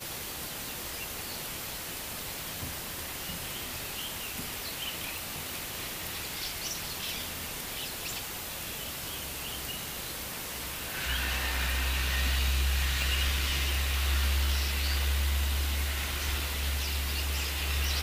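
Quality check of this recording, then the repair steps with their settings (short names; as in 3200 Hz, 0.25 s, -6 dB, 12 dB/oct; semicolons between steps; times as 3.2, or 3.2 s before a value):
5.18 pop
13.02 pop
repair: de-click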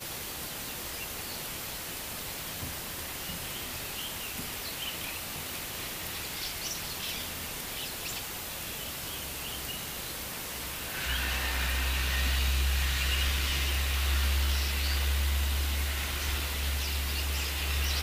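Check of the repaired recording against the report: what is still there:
none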